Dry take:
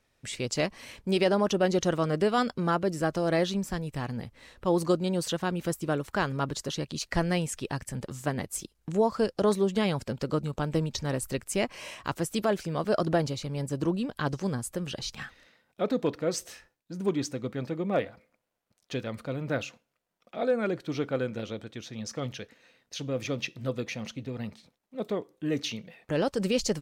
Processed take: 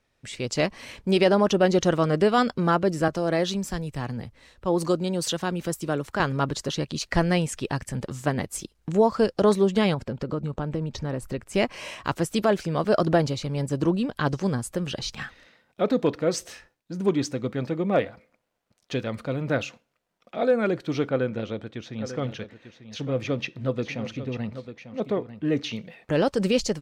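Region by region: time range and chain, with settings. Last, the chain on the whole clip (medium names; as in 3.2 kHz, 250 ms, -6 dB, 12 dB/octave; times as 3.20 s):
3.08–6.20 s: tone controls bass -1 dB, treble +4 dB + compression 1.5:1, threshold -30 dBFS + three bands expanded up and down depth 40%
9.94–11.54 s: treble shelf 2.7 kHz -10.5 dB + compression 3:1, threshold -30 dBFS
21.09–25.73 s: treble shelf 5 kHz -11.5 dB + delay 895 ms -11.5 dB
whole clip: treble shelf 8.9 kHz -8.5 dB; level rider gain up to 5 dB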